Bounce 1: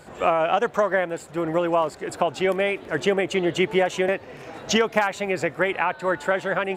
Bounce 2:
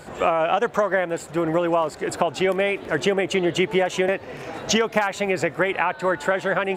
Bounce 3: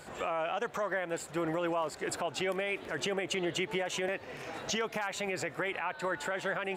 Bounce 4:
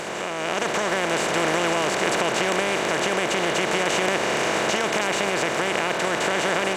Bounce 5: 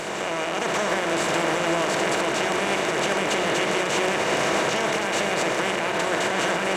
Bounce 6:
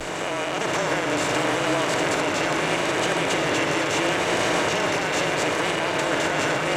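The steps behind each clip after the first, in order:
downward compressor 2 to 1, threshold −25 dBFS, peak gain reduction 6 dB; level +5 dB
tilt shelving filter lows −3 dB; brickwall limiter −15.5 dBFS, peak gain reduction 11 dB; level −7.5 dB
compressor on every frequency bin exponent 0.2; automatic gain control gain up to 9.5 dB; level −5.5 dB
brickwall limiter −14.5 dBFS, peak gain reduction 6.5 dB; on a send at −3.5 dB: convolution reverb RT60 2.2 s, pre-delay 3 ms
echo through a band-pass that steps 504 ms, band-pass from 3,500 Hz, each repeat −1.4 octaves, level −4.5 dB; pitch vibrato 0.74 Hz 48 cents; frequency shifter −33 Hz

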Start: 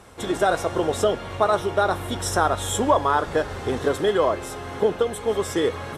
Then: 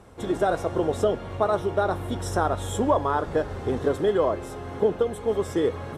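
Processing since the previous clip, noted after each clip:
tilt shelving filter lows +5 dB
level −4.5 dB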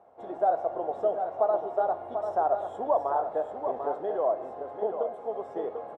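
resonant band-pass 710 Hz, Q 4.5
single-tap delay 743 ms −7 dB
on a send at −14 dB: convolution reverb RT60 2.1 s, pre-delay 15 ms
on the sum: level +3 dB

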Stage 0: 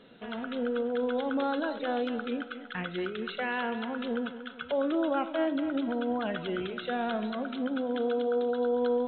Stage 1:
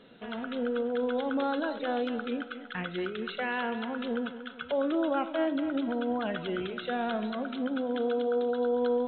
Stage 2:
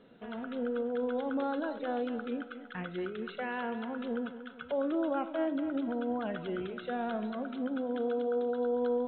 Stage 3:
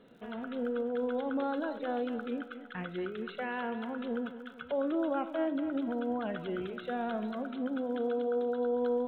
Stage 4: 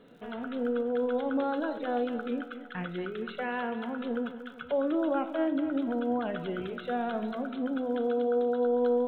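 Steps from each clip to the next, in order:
no processing that can be heard
high-shelf EQ 2,400 Hz −10.5 dB; level −2.5 dB
surface crackle 45 per second −55 dBFS
convolution reverb RT60 0.35 s, pre-delay 7 ms, DRR 12.5 dB; level +2.5 dB

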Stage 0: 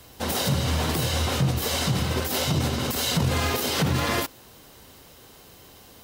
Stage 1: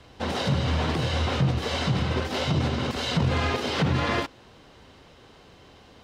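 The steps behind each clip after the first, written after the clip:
low-pass filter 3,700 Hz 12 dB per octave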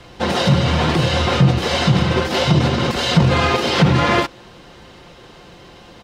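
comb filter 5.7 ms, depth 41%
level +9 dB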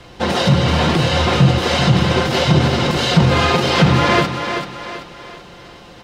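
feedback echo with a high-pass in the loop 385 ms, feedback 44%, high-pass 190 Hz, level −7 dB
level +1 dB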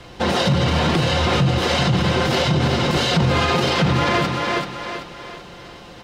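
brickwall limiter −9.5 dBFS, peak gain reduction 8 dB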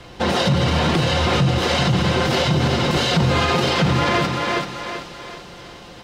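delay with a high-pass on its return 269 ms, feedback 73%, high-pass 5,000 Hz, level −10.5 dB

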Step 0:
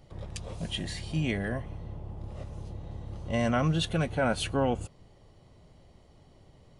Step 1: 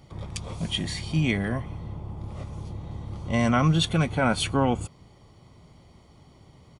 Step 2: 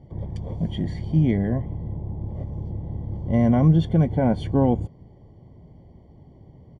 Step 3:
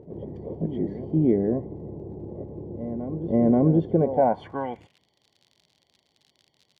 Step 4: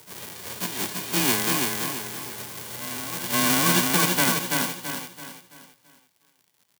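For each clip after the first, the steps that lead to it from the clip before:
high-pass filter 91 Hz 6 dB per octave; comb filter 0.9 ms, depth 38%; level +5 dB
moving average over 34 samples; level +5.5 dB
backwards echo 531 ms −13 dB; surface crackle 68 per second −43 dBFS; band-pass filter sweep 390 Hz → 3,900 Hz, 0:03.93–0:05.07; level +8 dB
spectral envelope flattened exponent 0.1; frequency shifter +18 Hz; on a send: repeating echo 333 ms, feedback 39%, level −3.5 dB; on the sum: level −2.5 dB

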